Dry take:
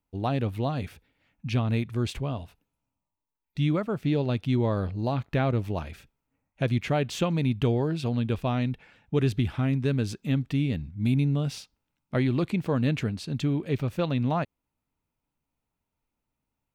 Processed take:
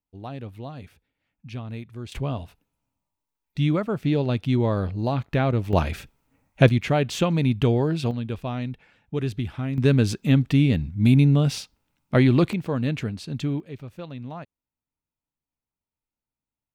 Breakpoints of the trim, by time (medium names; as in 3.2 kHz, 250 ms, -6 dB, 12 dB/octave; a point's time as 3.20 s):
-8.5 dB
from 2.12 s +3 dB
from 5.73 s +11.5 dB
from 6.69 s +4 dB
from 8.11 s -2.5 dB
from 9.78 s +7.5 dB
from 12.53 s 0 dB
from 13.60 s -10 dB